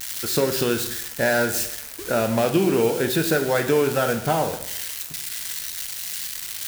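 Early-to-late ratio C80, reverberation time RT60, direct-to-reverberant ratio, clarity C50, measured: 12.0 dB, 0.80 s, 6.0 dB, 9.5 dB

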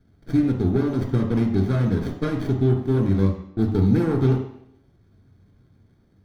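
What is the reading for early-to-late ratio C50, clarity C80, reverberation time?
6.5 dB, 9.5 dB, 0.70 s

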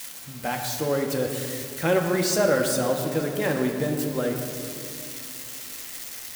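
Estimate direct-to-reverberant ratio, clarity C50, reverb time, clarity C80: 1.5 dB, 5.0 dB, 2.5 s, 6.0 dB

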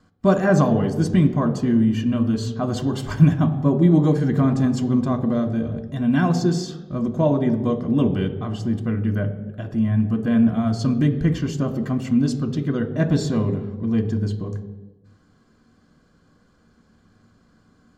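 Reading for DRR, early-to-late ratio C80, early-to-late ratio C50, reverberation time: 6.5 dB, 11.5 dB, 10.0 dB, non-exponential decay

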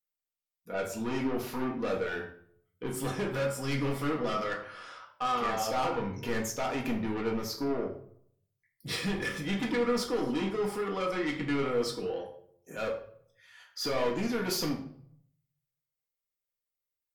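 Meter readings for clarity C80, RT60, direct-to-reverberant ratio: 12.5 dB, 0.60 s, 0.0 dB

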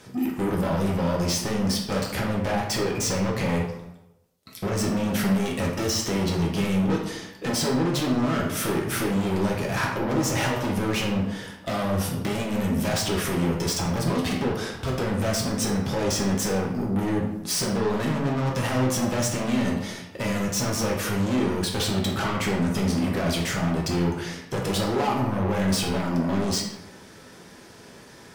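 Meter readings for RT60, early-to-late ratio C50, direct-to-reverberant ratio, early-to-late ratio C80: 0.95 s, 4.0 dB, −2.0 dB, 7.0 dB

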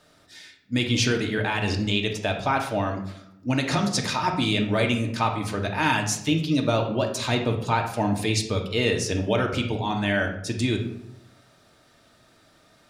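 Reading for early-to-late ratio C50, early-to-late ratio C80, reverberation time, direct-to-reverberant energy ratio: 7.5 dB, 11.0 dB, 0.75 s, 2.5 dB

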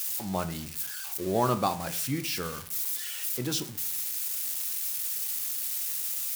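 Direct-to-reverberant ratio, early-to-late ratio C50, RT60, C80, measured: 9.5 dB, 15.0 dB, 0.55 s, 18.5 dB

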